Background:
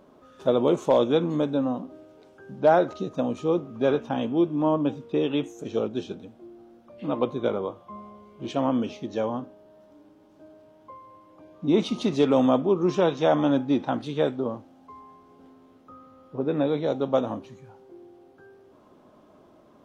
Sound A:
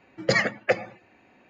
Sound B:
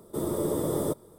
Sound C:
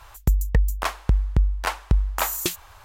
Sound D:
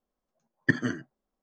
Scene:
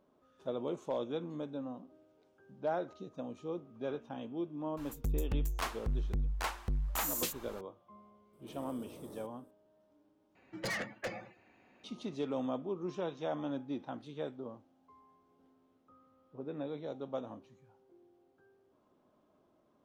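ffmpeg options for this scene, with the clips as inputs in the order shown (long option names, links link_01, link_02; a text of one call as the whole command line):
ffmpeg -i bed.wav -i cue0.wav -i cue1.wav -i cue2.wav -filter_complex "[0:a]volume=-16dB[link_01];[3:a]asoftclip=type=tanh:threshold=-24.5dB[link_02];[2:a]acompressor=threshold=-30dB:ratio=3:attack=0.14:release=23:knee=1:detection=peak[link_03];[1:a]asoftclip=type=tanh:threshold=-26.5dB[link_04];[link_01]asplit=2[link_05][link_06];[link_05]atrim=end=10.354[link_07];[link_04]atrim=end=1.49,asetpts=PTS-STARTPTS,volume=-7dB[link_08];[link_06]atrim=start=11.836[link_09];[link_02]atrim=end=2.84,asetpts=PTS-STARTPTS,volume=-5dB,afade=type=in:duration=0.004:curve=hsin,afade=type=out:start_time=2.836:duration=0.004:curve=hsin,adelay=210357S[link_10];[link_03]atrim=end=1.18,asetpts=PTS-STARTPTS,volume=-18dB,afade=type=in:duration=0.004:curve=hsin,afade=type=out:start_time=1.176:duration=0.004:curve=hsin,adelay=8330[link_11];[link_07][link_08]acrossfade=duration=0.004:curve1=hsin:curve2=hsin[link_12];[link_12][link_09]acrossfade=duration=0.004:curve1=hsin:curve2=hsin[link_13];[link_13][link_10][link_11]amix=inputs=3:normalize=0" out.wav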